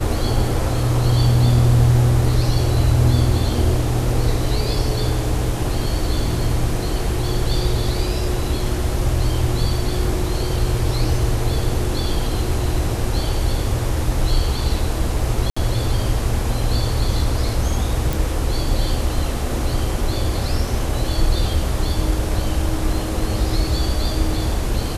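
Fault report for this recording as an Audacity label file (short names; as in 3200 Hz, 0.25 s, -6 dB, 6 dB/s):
15.500000	15.560000	gap 65 ms
18.130000	18.130000	pop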